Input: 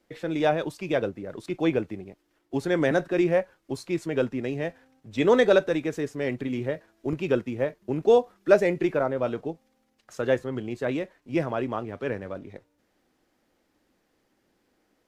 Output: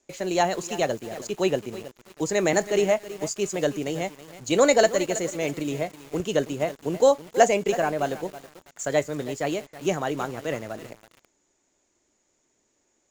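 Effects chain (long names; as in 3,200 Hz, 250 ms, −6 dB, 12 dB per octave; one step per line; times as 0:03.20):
low-pass with resonance 6,000 Hz, resonance Q 14
in parallel at −3 dB: bit reduction 7 bits
on the sum: speed change +15%
feedback echo at a low word length 324 ms, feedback 35%, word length 5 bits, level −14 dB
level −4 dB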